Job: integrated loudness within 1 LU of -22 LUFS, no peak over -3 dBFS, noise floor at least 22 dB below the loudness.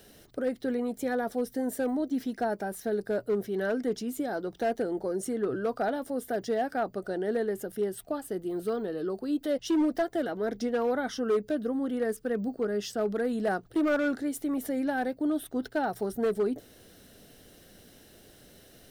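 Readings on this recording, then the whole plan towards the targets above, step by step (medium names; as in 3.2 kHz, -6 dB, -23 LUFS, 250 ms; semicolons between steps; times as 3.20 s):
clipped samples 1.3%; clipping level -21.5 dBFS; loudness -30.5 LUFS; peak level -21.5 dBFS; loudness target -22.0 LUFS
-> clip repair -21.5 dBFS; trim +8.5 dB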